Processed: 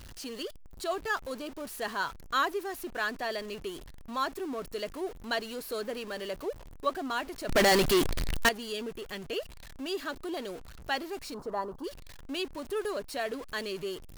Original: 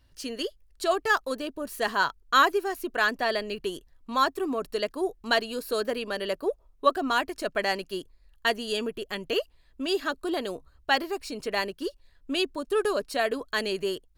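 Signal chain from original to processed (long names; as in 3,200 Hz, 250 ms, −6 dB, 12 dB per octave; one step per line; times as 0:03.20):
converter with a step at zero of −33 dBFS
0:07.49–0:08.49: leveller curve on the samples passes 5
0:11.34–0:11.84: high shelf with overshoot 1,600 Hz −13.5 dB, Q 3
level −8.5 dB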